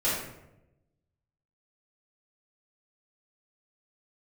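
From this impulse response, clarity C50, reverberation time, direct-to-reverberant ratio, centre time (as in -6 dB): 0.5 dB, 0.90 s, -11.5 dB, 61 ms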